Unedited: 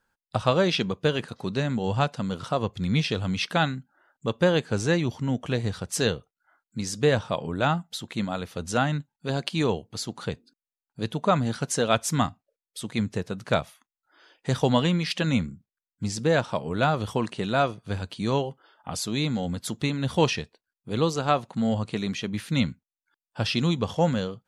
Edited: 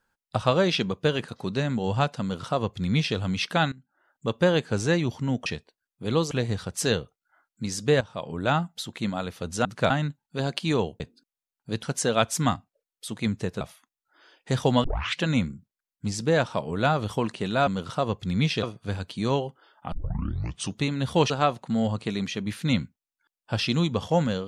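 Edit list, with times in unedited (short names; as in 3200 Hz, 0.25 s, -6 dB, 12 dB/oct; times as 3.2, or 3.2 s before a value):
2.21–3.17 copy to 17.65
3.72–4.27 fade in, from -18.5 dB
7.16–7.6 fade in, from -15.5 dB
9.9–10.3 cut
11.13–11.56 cut
13.34–13.59 move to 8.8
14.82 tape start 0.37 s
18.94 tape start 0.88 s
20.32–21.17 move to 5.46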